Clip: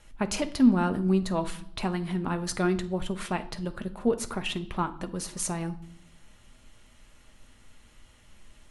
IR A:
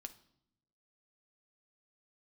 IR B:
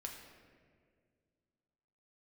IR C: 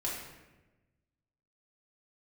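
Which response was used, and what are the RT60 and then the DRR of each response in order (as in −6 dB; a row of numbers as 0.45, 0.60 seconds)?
A; 0.75, 2.0, 1.1 seconds; 7.5, 0.5, −5.5 decibels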